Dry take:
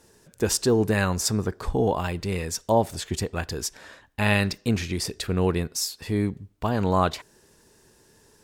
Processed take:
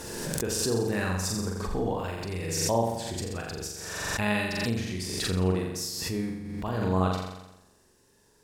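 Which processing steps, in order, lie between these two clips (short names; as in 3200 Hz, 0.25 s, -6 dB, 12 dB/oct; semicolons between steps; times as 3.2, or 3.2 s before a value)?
flutter echo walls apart 7.4 m, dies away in 0.94 s; backwards sustainer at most 30 dB/s; gain -9 dB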